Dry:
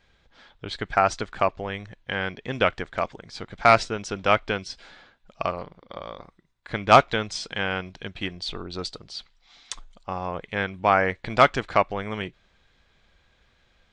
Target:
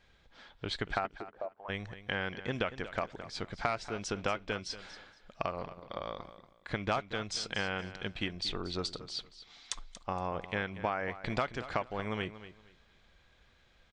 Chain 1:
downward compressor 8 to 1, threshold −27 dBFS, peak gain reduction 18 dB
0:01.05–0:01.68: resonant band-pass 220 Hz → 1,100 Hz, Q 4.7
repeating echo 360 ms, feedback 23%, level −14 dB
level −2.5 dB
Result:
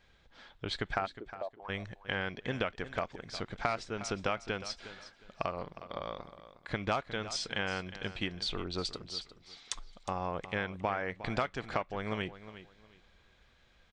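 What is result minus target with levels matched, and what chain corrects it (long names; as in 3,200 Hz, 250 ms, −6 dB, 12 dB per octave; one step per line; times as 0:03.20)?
echo 126 ms late
downward compressor 8 to 1, threshold −27 dBFS, peak gain reduction 18 dB
0:01.05–0:01.68: resonant band-pass 220 Hz → 1,100 Hz, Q 4.7
repeating echo 234 ms, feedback 23%, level −14 dB
level −2.5 dB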